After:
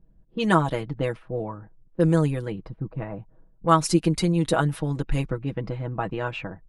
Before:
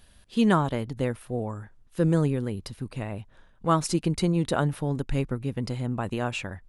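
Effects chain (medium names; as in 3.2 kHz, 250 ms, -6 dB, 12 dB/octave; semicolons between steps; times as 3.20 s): comb 6.2 ms, depth 71%; level-controlled noise filter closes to 330 Hz, open at -19 dBFS; harmonic-percussive split harmonic -5 dB; trim +2.5 dB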